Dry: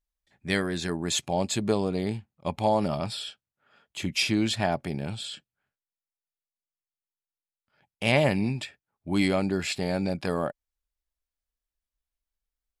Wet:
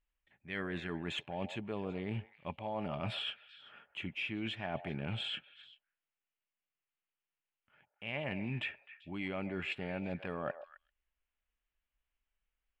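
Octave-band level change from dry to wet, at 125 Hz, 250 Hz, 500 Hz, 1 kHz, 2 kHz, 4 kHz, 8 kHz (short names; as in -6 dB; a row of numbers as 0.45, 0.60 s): -11.0 dB, -13.0 dB, -13.5 dB, -12.5 dB, -8.5 dB, -9.5 dB, under -25 dB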